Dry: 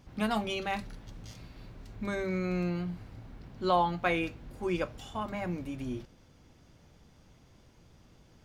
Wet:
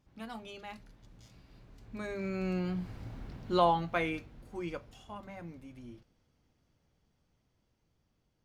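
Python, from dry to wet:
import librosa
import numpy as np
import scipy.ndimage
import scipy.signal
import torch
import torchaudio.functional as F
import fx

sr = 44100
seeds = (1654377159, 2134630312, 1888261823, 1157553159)

y = fx.doppler_pass(x, sr, speed_mps=14, closest_m=5.9, pass_at_s=3.18)
y = y * librosa.db_to_amplitude(3.5)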